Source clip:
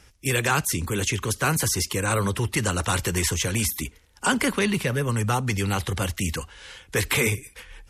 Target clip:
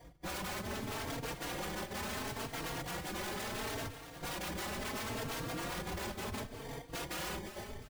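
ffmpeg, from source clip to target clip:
ffmpeg -i in.wav -filter_complex "[0:a]asettb=1/sr,asplit=3[link_01][link_02][link_03];[link_01]atrim=end=0.624[link_04];[link_02]atrim=start=0.62:end=3.22,asetpts=PTS-STARTPTS,afade=type=in:duration=0.004:curve=qsin,afade=type=out:start_time=2.596:duration=0.004:curve=qsin,acrossover=split=2800[link_05][link_06];[link_06]acompressor=threshold=-38dB:ratio=4:attack=1:release=60[link_07];[link_05][link_07]amix=inputs=2:normalize=0[link_08];[link_03]atrim=start=3.216[link_09];[link_04][link_08]acrossfade=duration=0.004:curve1=hsin:curve2=qsin[link_10];[link_10][link_09]acrossfade=duration=0.004:curve1=qsin:curve2=hsin,equalizer=frequency=11000:width_type=o:width=0.21:gain=8,acrossover=split=250|3000[link_11][link_12][link_13];[link_11]acompressor=threshold=-37dB:ratio=6[link_14];[link_14][link_12][link_13]amix=inputs=3:normalize=0,acrusher=samples=33:mix=1:aa=0.000001,volume=28dB,asoftclip=hard,volume=-28dB,afftfilt=real='hypot(re,im)*cos(2*PI*random(0))':imag='hypot(re,im)*sin(2*PI*random(1))':win_size=512:overlap=0.75,aeval=exprs='0.0106*(abs(mod(val(0)/0.0106+3,4)-2)-1)':channel_layout=same,aecho=1:1:354|708|1062|1416:0.266|0.114|0.0492|0.0212,asplit=2[link_15][link_16];[link_16]adelay=3.8,afreqshift=0.72[link_17];[link_15][link_17]amix=inputs=2:normalize=1,volume=7.5dB" out.wav

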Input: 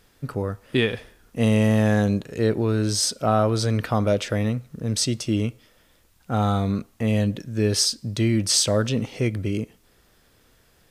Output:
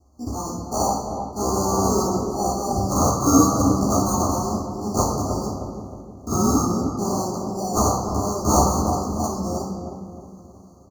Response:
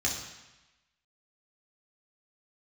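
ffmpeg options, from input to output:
-filter_complex "[0:a]highshelf=frequency=3000:gain=-2.5,acrossover=split=740[link_01][link_02];[link_01]alimiter=limit=-22.5dB:level=0:latency=1:release=64[link_03];[link_02]dynaudnorm=framelen=140:gausssize=3:maxgain=12.5dB[link_04];[link_03][link_04]amix=inputs=2:normalize=0,asetrate=78577,aresample=44100,atempo=0.561231,acrusher=samples=17:mix=1:aa=0.000001,asuperstop=centerf=2400:order=20:qfactor=0.75,asplit=2[link_05][link_06];[link_06]adelay=311,lowpass=frequency=850:poles=1,volume=-5dB,asplit=2[link_07][link_08];[link_08]adelay=311,lowpass=frequency=850:poles=1,volume=0.5,asplit=2[link_09][link_10];[link_10]adelay=311,lowpass=frequency=850:poles=1,volume=0.5,asplit=2[link_11][link_12];[link_12]adelay=311,lowpass=frequency=850:poles=1,volume=0.5,asplit=2[link_13][link_14];[link_14]adelay=311,lowpass=frequency=850:poles=1,volume=0.5,asplit=2[link_15][link_16];[link_16]adelay=311,lowpass=frequency=850:poles=1,volume=0.5[link_17];[link_05][link_07][link_09][link_11][link_13][link_15][link_17]amix=inputs=7:normalize=0[link_18];[1:a]atrim=start_sample=2205[link_19];[link_18][link_19]afir=irnorm=-1:irlink=0,volume=-8dB"

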